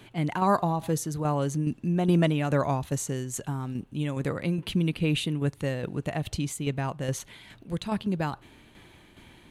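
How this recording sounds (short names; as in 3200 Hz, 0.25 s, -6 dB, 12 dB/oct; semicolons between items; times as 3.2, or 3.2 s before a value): tremolo saw down 2.4 Hz, depth 50%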